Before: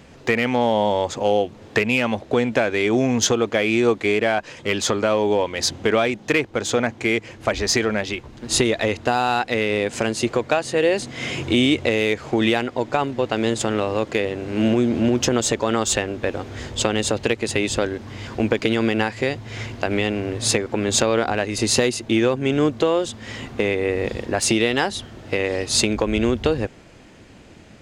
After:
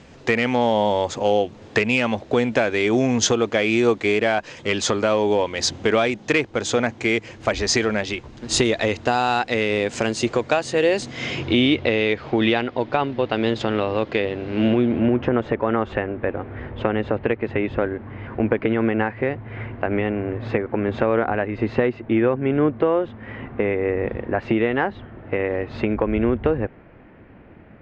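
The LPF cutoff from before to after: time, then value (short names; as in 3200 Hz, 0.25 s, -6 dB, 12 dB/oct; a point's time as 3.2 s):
LPF 24 dB/oct
11.02 s 7900 Hz
11.61 s 4300 Hz
14.62 s 4300 Hz
15.22 s 2100 Hz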